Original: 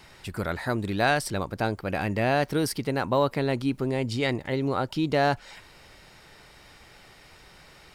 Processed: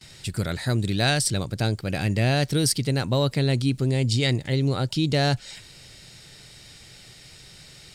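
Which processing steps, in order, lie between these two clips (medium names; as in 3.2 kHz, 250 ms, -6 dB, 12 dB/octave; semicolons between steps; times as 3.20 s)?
gate with hold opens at -44 dBFS; graphic EQ 125/1000/4000/8000 Hz +10/-8/+7/+11 dB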